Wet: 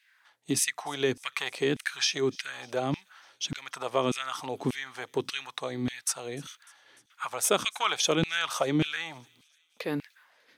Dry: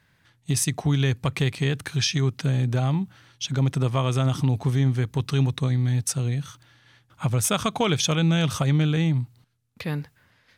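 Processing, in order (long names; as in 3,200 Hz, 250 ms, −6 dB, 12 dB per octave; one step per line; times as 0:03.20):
auto-filter high-pass saw down 1.7 Hz 230–2,700 Hz
delay with a high-pass on its return 299 ms, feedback 60%, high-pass 3,500 Hz, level −23.5 dB
level −2.5 dB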